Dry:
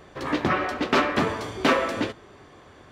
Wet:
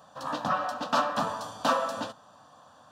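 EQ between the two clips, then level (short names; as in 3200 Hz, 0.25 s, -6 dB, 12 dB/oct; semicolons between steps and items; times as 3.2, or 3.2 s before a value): HPF 220 Hz 12 dB/oct; bell 400 Hz -11 dB 0.21 oct; fixed phaser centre 890 Hz, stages 4; 0.0 dB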